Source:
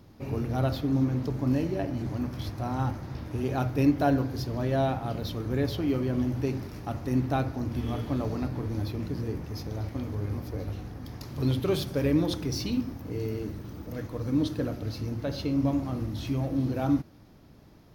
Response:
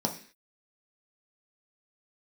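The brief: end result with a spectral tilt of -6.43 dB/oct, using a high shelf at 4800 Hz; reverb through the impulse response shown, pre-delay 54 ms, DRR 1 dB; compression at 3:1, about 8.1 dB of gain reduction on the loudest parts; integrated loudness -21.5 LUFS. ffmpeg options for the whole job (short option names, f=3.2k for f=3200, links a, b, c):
-filter_complex "[0:a]highshelf=f=4.8k:g=6,acompressor=threshold=-28dB:ratio=3,asplit=2[a][b];[1:a]atrim=start_sample=2205,adelay=54[c];[b][c]afir=irnorm=-1:irlink=0,volume=-8dB[d];[a][d]amix=inputs=2:normalize=0,volume=6dB"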